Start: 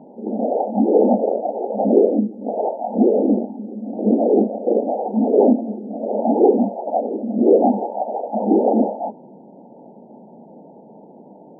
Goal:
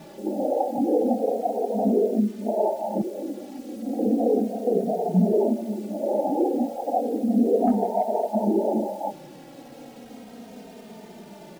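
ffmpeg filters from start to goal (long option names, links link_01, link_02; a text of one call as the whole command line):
ffmpeg -i in.wav -filter_complex "[0:a]lowshelf=frequency=120:gain=8.5,bandreject=frequency=193.7:width_type=h:width=4,bandreject=frequency=387.4:width_type=h:width=4,bandreject=frequency=581.1:width_type=h:width=4,bandreject=frequency=774.8:width_type=h:width=4,bandreject=frequency=968.5:width_type=h:width=4,bandreject=frequency=1162.2:width_type=h:width=4,bandreject=frequency=1355.9:width_type=h:width=4,bandreject=frequency=1549.6:width_type=h:width=4,bandreject=frequency=1743.3:width_type=h:width=4,bandreject=frequency=1937:width_type=h:width=4,asettb=1/sr,asplit=3[link_01][link_02][link_03];[link_01]atrim=end=7.674[link_04];[link_02]atrim=start=7.67:end=8.27,asetpts=PTS-STARTPTS,afade=type=in:duration=0.004:curve=qsin,afade=type=out:start_time=0.596:duration=0.004:curve=qsin,acontrast=24[link_05];[link_03]atrim=start=8.266[link_06];[link_04][link_05]acrossfade=duration=0.004:curve1=hsin:curve2=qsin[link_07];[link_07][link_06]acrossfade=duration=0.004:curve1=qsin:curve2=hsin,alimiter=limit=-12dB:level=0:latency=1:release=297,asettb=1/sr,asplit=3[link_08][link_09][link_10];[link_08]atrim=end=3.014[link_11];[link_09]atrim=start=3.01:end=3.77,asetpts=PTS-STARTPTS,afade=type=in:duration=0.004:curve=qsin,afade=type=out:start_time=0.756:duration=0.004:curve=qsin,acompressor=threshold=-27dB:ratio=6[link_12];[link_10]atrim=start=3.766[link_13];[link_11][link_12]acrossfade=duration=0.004:curve1=hsin:curve2=qsin[link_14];[link_14][link_13]acrossfade=duration=0.004:curve1=qsin:curve2=hsin,acrusher=bits=7:mix=0:aa=0.000001,asettb=1/sr,asplit=3[link_15][link_16][link_17];[link_15]atrim=end=4.734[link_18];[link_16]atrim=start=4.73:end=5.33,asetpts=PTS-STARTPTS,afade=type=in:duration=0.004:curve=qsin,afade=type=out:start_time=0.596:duration=0.004:curve=qsin,afreqshift=-36[link_19];[link_17]atrim=start=5.326[link_20];[link_18][link_19]acrossfade=duration=0.004:curve1=hsin:curve2=qsin[link_21];[link_21][link_20]acrossfade=duration=0.004:curve1=qsin:curve2=hsin,asplit=2[link_22][link_23];[link_23]adelay=3,afreqshift=-0.34[link_24];[link_22][link_24]amix=inputs=2:normalize=1,volume=1.5dB" out.wav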